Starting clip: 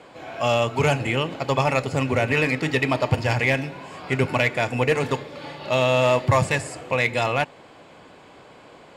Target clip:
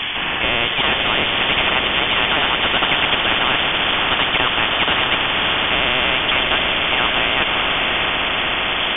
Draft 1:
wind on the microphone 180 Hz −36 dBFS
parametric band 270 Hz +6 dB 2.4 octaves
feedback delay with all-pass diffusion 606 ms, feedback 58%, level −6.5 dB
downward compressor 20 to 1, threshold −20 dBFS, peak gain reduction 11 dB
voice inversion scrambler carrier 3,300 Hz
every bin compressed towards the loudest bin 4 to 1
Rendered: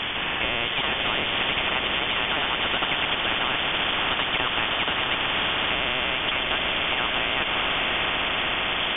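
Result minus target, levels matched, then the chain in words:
downward compressor: peak gain reduction +11 dB
wind on the microphone 180 Hz −36 dBFS
parametric band 270 Hz +6 dB 2.4 octaves
feedback delay with all-pass diffusion 606 ms, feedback 58%, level −6.5 dB
voice inversion scrambler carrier 3,300 Hz
every bin compressed towards the loudest bin 4 to 1

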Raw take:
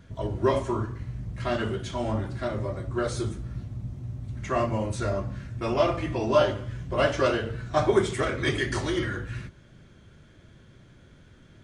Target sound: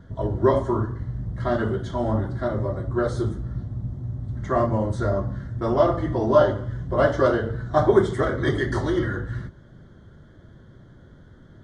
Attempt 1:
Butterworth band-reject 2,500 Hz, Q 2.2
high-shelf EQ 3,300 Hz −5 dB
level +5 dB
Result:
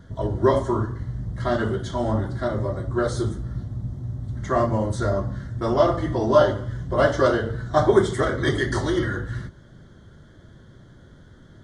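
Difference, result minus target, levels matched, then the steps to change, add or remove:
8,000 Hz band +7.5 dB
change: high-shelf EQ 3,300 Hz −15 dB

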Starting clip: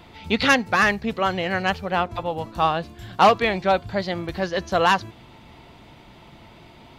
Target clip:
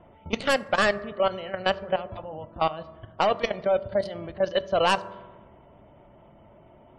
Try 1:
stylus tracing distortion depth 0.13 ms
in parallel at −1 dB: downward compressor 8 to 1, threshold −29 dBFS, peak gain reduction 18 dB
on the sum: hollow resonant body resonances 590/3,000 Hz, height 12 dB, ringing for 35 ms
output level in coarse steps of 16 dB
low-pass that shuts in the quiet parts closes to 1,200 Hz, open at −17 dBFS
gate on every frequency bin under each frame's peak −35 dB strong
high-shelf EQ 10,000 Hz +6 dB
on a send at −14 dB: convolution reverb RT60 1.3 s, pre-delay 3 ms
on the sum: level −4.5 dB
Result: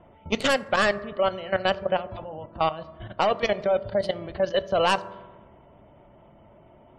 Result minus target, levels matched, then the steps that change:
downward compressor: peak gain reduction −7 dB
change: downward compressor 8 to 1, threshold −37 dBFS, peak gain reduction 25 dB

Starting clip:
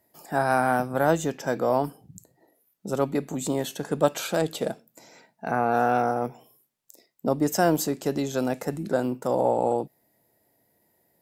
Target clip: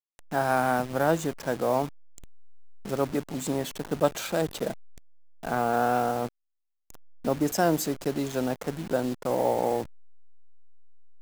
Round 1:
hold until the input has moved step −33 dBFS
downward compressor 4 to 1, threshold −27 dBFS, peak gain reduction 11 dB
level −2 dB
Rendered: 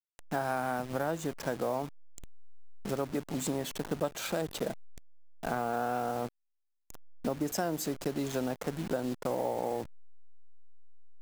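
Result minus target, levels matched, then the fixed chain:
downward compressor: peak gain reduction +11 dB
hold until the input has moved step −33 dBFS
level −2 dB

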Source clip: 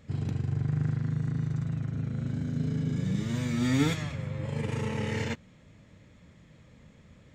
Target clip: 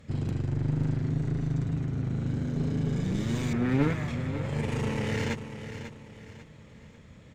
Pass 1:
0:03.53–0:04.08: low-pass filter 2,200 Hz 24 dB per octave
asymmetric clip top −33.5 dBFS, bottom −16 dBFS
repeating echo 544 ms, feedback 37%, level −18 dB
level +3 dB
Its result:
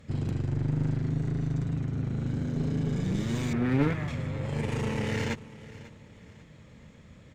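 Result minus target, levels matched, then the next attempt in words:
echo-to-direct −7.5 dB
0:03.53–0:04.08: low-pass filter 2,200 Hz 24 dB per octave
asymmetric clip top −33.5 dBFS, bottom −16 dBFS
repeating echo 544 ms, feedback 37%, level −10.5 dB
level +3 dB

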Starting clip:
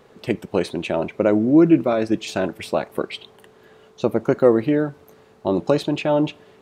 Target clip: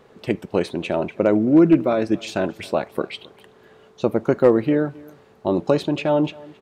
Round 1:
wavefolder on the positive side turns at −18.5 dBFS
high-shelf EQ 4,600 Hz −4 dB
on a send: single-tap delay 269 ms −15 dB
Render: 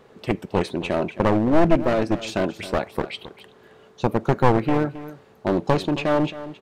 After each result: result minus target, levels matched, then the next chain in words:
wavefolder on the positive side: distortion +28 dB; echo-to-direct +8 dB
wavefolder on the positive side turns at −7 dBFS
high-shelf EQ 4,600 Hz −4 dB
on a send: single-tap delay 269 ms −15 dB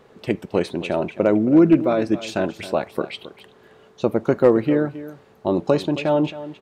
echo-to-direct +8 dB
wavefolder on the positive side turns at −7 dBFS
high-shelf EQ 4,600 Hz −4 dB
on a send: single-tap delay 269 ms −23 dB

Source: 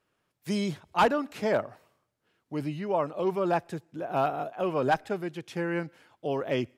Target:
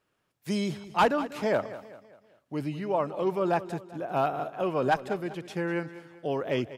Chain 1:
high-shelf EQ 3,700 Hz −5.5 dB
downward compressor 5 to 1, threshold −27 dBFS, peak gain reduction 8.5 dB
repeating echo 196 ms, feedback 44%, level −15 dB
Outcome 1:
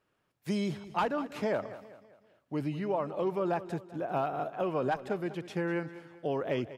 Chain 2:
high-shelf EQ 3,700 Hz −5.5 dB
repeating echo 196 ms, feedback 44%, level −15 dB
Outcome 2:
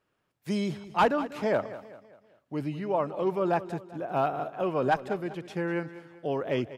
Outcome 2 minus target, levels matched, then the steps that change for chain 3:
8,000 Hz band −4.0 dB
remove: high-shelf EQ 3,700 Hz −5.5 dB

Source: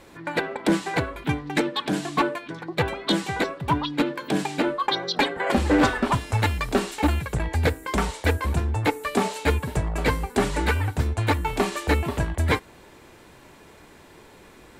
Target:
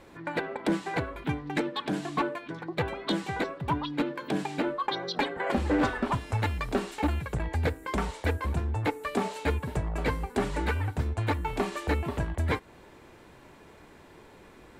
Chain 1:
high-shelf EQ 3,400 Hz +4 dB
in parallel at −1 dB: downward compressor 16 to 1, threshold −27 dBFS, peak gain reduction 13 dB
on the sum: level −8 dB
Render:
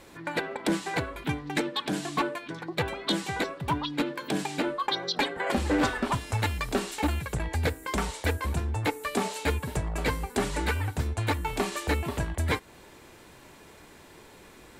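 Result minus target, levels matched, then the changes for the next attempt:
8,000 Hz band +8.0 dB
change: high-shelf EQ 3,400 Hz −7 dB

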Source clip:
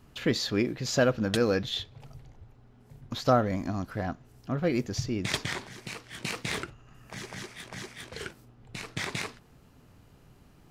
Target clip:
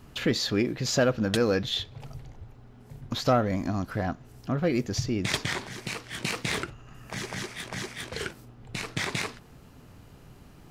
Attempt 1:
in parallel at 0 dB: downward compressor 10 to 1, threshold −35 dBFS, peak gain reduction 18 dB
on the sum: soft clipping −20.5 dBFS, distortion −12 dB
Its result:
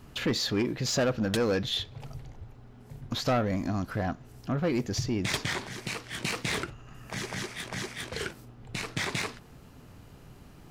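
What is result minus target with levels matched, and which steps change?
soft clipping: distortion +12 dB
change: soft clipping −11.5 dBFS, distortion −24 dB

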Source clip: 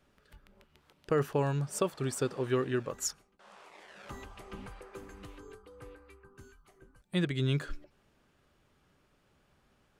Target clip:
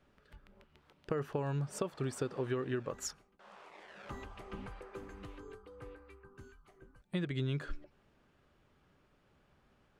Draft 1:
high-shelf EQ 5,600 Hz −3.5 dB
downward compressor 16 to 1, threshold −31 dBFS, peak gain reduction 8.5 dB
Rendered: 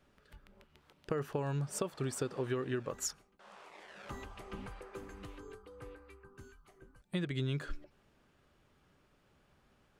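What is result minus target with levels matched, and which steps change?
8,000 Hz band +4.0 dB
change: high-shelf EQ 5,600 Hz −11.5 dB

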